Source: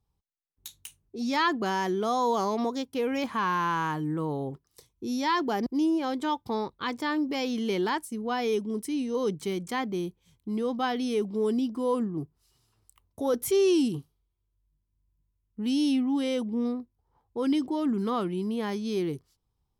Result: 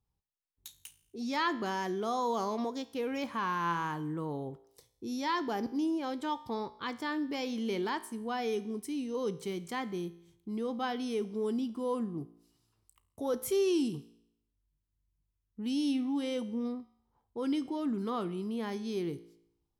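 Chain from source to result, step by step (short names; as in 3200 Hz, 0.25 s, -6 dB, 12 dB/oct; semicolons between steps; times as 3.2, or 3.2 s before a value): resonator 57 Hz, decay 0.74 s, harmonics all, mix 50%; gain -1 dB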